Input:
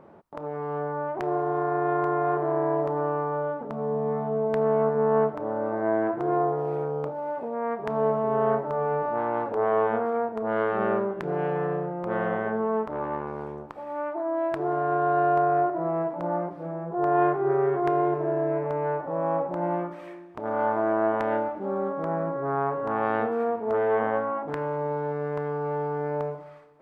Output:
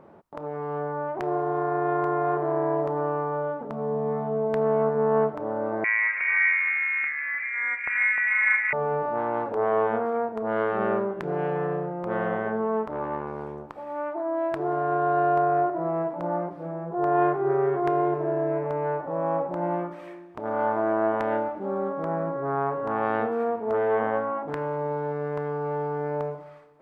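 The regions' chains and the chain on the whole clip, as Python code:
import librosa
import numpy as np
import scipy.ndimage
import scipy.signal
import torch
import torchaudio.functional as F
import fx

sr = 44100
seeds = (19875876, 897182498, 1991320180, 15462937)

y = fx.chain(x, sr, fx.echo_split(split_hz=770.0, low_ms=147, high_ms=304, feedback_pct=52, wet_db=-5),
    fx.freq_invert(carrier_hz=2600), at=(5.84, 8.73))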